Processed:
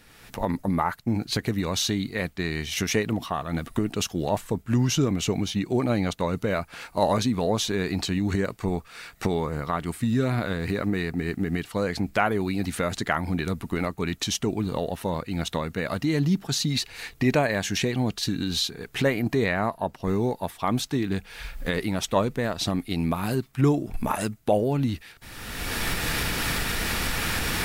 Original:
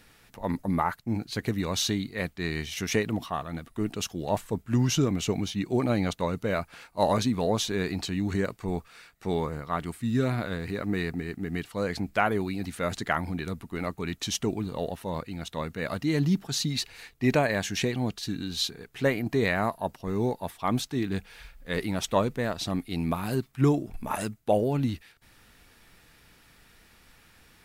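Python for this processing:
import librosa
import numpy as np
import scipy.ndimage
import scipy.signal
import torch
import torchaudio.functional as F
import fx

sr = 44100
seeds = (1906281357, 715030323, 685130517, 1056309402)

y = fx.recorder_agc(x, sr, target_db=-18.5, rise_db_per_s=31.0, max_gain_db=30)
y = fx.high_shelf(y, sr, hz=5400.0, db=-7.5, at=(19.44, 20.02))
y = F.gain(torch.from_numpy(y), 1.5).numpy()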